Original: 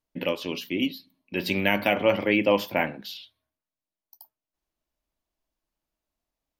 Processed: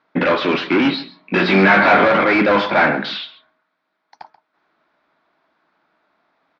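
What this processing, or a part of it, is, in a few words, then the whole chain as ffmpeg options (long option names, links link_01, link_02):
overdrive pedal into a guitar cabinet: -filter_complex "[0:a]asplit=2[link_01][link_02];[link_02]highpass=frequency=720:poles=1,volume=34dB,asoftclip=type=tanh:threshold=-6dB[link_03];[link_01][link_03]amix=inputs=2:normalize=0,lowpass=frequency=2300:poles=1,volume=-6dB,highpass=110,equalizer=frequency=110:width_type=q:width=4:gain=-8,equalizer=frequency=160:width_type=q:width=4:gain=4,equalizer=frequency=530:width_type=q:width=4:gain=-4,equalizer=frequency=1400:width_type=q:width=4:gain=7,equalizer=frequency=2900:width_type=q:width=4:gain=-10,lowpass=frequency=3700:width=0.5412,lowpass=frequency=3700:width=1.3066,asettb=1/sr,asplit=3[link_04][link_05][link_06];[link_04]atrim=end=0.834[link_07];[link_05]atrim=start=0.83:end=2.08,asetpts=PTS-STARTPTS,afade=type=in:duration=0.004:curve=qsin,afade=type=out:start_time=1.246:duration=0.004:curve=qsin,asplit=2[link_08][link_09];[link_09]adelay=21,volume=-2dB[link_10];[link_08][link_10]amix=inputs=2:normalize=0,atrim=end_sample=55125[link_11];[link_06]atrim=start=2.076[link_12];[link_07][link_11]acrossfade=duration=0.004:curve1=hsin:curve2=qsin[link_13];[link_13][link_12]acrossfade=duration=0.004:curve1=qsin:curve2=hsin,asplit=2[link_14][link_15];[link_15]adelay=134.1,volume=-16dB,highshelf=frequency=4000:gain=-3.02[link_16];[link_14][link_16]amix=inputs=2:normalize=0,volume=1dB"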